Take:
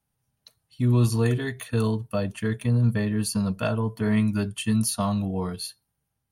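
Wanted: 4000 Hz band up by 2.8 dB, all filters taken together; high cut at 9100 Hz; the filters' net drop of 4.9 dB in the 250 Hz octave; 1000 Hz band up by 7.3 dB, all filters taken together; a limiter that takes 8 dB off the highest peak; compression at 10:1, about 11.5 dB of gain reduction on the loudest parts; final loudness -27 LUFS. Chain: LPF 9100 Hz; bell 250 Hz -6.5 dB; bell 1000 Hz +9 dB; bell 4000 Hz +3 dB; compressor 10:1, threshold -30 dBFS; gain +9 dB; limiter -17 dBFS

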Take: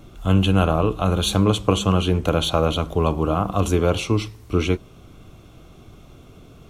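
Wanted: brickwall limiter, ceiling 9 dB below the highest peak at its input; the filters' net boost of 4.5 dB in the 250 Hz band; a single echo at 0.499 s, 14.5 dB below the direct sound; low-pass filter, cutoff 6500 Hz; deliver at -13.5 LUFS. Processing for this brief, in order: LPF 6500 Hz; bell 250 Hz +6.5 dB; limiter -10 dBFS; echo 0.499 s -14.5 dB; gain +8 dB

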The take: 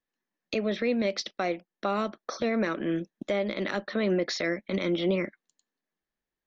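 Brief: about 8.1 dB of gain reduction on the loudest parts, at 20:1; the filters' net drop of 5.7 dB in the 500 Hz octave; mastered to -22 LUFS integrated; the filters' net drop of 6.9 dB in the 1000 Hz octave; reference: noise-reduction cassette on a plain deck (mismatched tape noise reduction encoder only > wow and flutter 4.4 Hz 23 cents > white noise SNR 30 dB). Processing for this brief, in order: bell 500 Hz -5.5 dB; bell 1000 Hz -8 dB; compressor 20:1, threshold -33 dBFS; mismatched tape noise reduction encoder only; wow and flutter 4.4 Hz 23 cents; white noise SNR 30 dB; gain +16.5 dB

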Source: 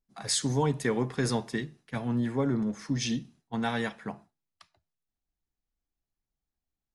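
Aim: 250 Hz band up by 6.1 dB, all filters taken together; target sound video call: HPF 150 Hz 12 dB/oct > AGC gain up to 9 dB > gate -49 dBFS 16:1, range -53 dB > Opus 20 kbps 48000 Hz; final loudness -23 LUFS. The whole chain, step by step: HPF 150 Hz 12 dB/oct; bell 250 Hz +7.5 dB; AGC gain up to 9 dB; gate -49 dBFS 16:1, range -53 dB; gain +4 dB; Opus 20 kbps 48000 Hz

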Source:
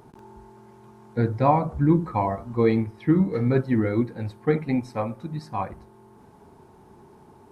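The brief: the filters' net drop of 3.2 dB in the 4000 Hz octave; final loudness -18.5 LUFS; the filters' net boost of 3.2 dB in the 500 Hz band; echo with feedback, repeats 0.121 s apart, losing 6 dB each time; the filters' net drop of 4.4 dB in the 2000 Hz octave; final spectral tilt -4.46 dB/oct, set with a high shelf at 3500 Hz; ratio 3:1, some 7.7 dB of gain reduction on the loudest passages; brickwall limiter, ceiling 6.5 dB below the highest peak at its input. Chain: bell 500 Hz +4 dB; bell 2000 Hz -6 dB; high shelf 3500 Hz +6.5 dB; bell 4000 Hz -6.5 dB; compressor 3:1, threshold -23 dBFS; limiter -19 dBFS; feedback echo 0.121 s, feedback 50%, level -6 dB; gain +10.5 dB

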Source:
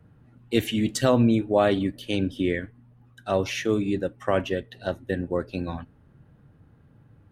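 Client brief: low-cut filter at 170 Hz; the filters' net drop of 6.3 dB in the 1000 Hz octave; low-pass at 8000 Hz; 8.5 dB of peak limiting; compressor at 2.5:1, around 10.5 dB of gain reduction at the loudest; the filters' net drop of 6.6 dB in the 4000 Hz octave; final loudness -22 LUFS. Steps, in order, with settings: HPF 170 Hz; LPF 8000 Hz; bell 1000 Hz -9 dB; bell 4000 Hz -8.5 dB; compressor 2.5:1, threshold -34 dBFS; gain +16 dB; limiter -10.5 dBFS

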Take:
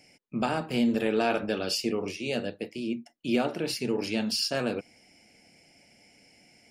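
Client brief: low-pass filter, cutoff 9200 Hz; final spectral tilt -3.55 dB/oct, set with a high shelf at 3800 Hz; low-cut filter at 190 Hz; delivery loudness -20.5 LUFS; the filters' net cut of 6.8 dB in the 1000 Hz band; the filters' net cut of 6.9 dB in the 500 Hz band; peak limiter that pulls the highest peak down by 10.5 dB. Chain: HPF 190 Hz; LPF 9200 Hz; bell 500 Hz -7 dB; bell 1000 Hz -7 dB; high shelf 3800 Hz +3.5 dB; gain +15.5 dB; limiter -10.5 dBFS

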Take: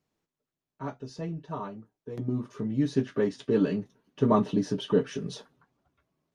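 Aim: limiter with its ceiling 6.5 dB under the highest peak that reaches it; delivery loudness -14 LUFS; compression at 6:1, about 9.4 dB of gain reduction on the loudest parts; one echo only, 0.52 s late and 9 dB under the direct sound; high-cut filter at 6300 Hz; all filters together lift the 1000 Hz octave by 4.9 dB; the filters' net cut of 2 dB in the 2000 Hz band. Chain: LPF 6300 Hz; bell 1000 Hz +7 dB; bell 2000 Hz -5.5 dB; compressor 6:1, threshold -27 dBFS; limiter -24 dBFS; echo 0.52 s -9 dB; gain +22 dB

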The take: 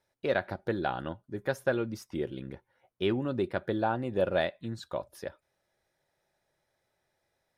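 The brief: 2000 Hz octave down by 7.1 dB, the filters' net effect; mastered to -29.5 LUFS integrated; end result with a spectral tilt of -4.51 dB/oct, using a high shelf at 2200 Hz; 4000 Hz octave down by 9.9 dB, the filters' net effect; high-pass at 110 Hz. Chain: HPF 110 Hz; bell 2000 Hz -6.5 dB; high shelf 2200 Hz -5 dB; bell 4000 Hz -5.5 dB; gain +4 dB

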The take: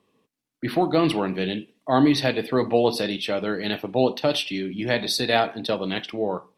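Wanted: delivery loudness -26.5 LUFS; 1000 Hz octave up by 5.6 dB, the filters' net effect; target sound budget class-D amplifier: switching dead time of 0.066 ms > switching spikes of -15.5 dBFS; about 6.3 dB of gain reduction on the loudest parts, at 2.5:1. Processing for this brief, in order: bell 1000 Hz +8 dB; compressor 2.5:1, threshold -21 dBFS; switching dead time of 0.066 ms; switching spikes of -15.5 dBFS; gain -2.5 dB

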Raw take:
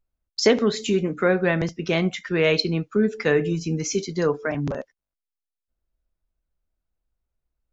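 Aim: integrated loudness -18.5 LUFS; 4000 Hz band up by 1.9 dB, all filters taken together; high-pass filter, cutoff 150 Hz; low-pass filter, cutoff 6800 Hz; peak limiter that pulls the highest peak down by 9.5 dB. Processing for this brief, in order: HPF 150 Hz; LPF 6800 Hz; bell 4000 Hz +3 dB; gain +7 dB; limiter -7 dBFS

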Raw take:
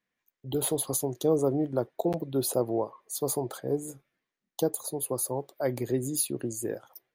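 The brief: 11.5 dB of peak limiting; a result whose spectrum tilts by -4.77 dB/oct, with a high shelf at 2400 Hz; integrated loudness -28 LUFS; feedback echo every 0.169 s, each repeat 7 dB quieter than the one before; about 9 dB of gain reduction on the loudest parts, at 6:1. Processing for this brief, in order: high shelf 2400 Hz -7.5 dB; compressor 6:1, threshold -31 dBFS; limiter -32 dBFS; feedback echo 0.169 s, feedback 45%, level -7 dB; gain +13.5 dB

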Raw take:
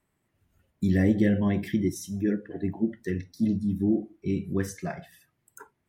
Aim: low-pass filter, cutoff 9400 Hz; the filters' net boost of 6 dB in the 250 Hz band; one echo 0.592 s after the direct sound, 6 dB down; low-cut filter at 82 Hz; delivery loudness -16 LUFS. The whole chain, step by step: HPF 82 Hz; LPF 9400 Hz; bell 250 Hz +8 dB; echo 0.592 s -6 dB; gain +5.5 dB

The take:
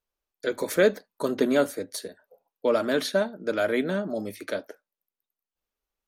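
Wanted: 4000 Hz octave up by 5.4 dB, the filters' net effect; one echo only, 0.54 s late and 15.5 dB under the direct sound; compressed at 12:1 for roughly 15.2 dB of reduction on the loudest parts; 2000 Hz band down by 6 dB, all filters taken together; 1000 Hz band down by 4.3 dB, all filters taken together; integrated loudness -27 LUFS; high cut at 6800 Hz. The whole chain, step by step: LPF 6800 Hz; bell 1000 Hz -4 dB; bell 2000 Hz -8.5 dB; bell 4000 Hz +9 dB; compressor 12:1, threshold -32 dBFS; echo 0.54 s -15.5 dB; gain +11 dB

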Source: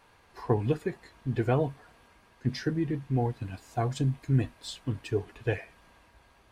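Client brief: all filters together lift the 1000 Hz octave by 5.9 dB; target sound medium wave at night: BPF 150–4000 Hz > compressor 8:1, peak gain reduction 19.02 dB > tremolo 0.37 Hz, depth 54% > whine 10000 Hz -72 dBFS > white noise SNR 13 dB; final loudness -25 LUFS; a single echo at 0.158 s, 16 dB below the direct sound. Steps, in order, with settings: BPF 150–4000 Hz; bell 1000 Hz +8.5 dB; echo 0.158 s -16 dB; compressor 8:1, threshold -38 dBFS; tremolo 0.37 Hz, depth 54%; whine 10000 Hz -72 dBFS; white noise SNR 13 dB; gain +21.5 dB

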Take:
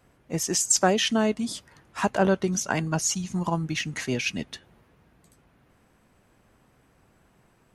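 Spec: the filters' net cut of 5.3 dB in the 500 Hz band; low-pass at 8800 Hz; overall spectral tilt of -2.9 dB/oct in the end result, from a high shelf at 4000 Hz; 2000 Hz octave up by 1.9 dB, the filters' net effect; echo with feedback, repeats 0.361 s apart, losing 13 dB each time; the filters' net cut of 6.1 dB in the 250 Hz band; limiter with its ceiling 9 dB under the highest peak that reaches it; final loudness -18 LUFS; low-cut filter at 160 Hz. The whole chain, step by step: HPF 160 Hz; LPF 8800 Hz; bell 250 Hz -5.5 dB; bell 500 Hz -5.5 dB; bell 2000 Hz +4.5 dB; high shelf 4000 Hz -6 dB; limiter -18 dBFS; feedback echo 0.361 s, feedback 22%, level -13 dB; gain +13 dB

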